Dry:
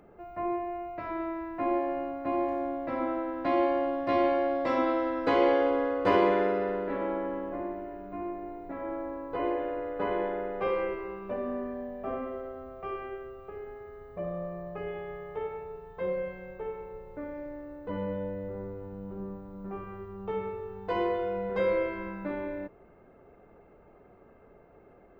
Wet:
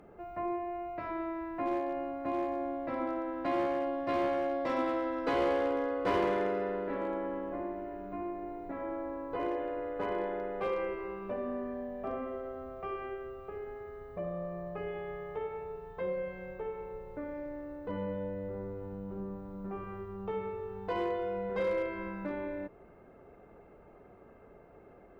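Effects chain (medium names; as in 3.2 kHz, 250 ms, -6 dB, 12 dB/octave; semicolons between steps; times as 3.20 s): in parallel at +1 dB: compression 10:1, threshold -38 dBFS, peak gain reduction 18.5 dB; on the sum: one-sided clip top -20.5 dBFS; trim -6 dB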